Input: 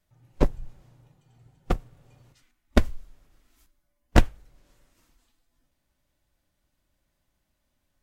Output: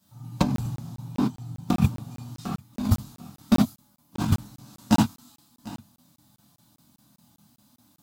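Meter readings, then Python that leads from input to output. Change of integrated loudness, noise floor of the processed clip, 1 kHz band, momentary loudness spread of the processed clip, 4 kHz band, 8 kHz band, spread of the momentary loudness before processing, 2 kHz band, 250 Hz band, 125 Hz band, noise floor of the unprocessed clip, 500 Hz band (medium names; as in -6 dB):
+1.0 dB, under -85 dBFS, +3.5 dB, 20 LU, +4.5 dB, +7.0 dB, 10 LU, -3.0 dB, +8.5 dB, +5.5 dB, -77 dBFS, -4.0 dB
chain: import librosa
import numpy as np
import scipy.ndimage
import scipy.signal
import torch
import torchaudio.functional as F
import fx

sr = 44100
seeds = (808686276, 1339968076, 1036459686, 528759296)

y = fx.rattle_buzz(x, sr, strikes_db=-20.0, level_db=-21.0)
y = fx.chorus_voices(y, sr, voices=6, hz=0.64, base_ms=24, depth_ms=1.0, mix_pct=30)
y = scipy.signal.sosfilt(scipy.signal.butter(4, 90.0, 'highpass', fs=sr, output='sos'), y)
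y = fx.high_shelf(y, sr, hz=7100.0, db=11.0)
y = fx.echo_feedback(y, sr, ms=746, feedback_pct=25, wet_db=-22.5)
y = fx.leveller(y, sr, passes=2)
y = 10.0 ** (-13.5 / 20.0) * np.tanh(y / 10.0 ** (-13.5 / 20.0))
y = fx.graphic_eq(y, sr, hz=(125, 250, 500, 1000, 2000, 4000), db=(7, 11, -11, 10, -10, 6))
y = fx.rev_gated(y, sr, seeds[0], gate_ms=110, shape='flat', drr_db=-7.5)
y = fx.over_compress(y, sr, threshold_db=-21.0, ratio=-1.0)
y = fx.buffer_crackle(y, sr, first_s=0.56, period_s=0.2, block=1024, kind='zero')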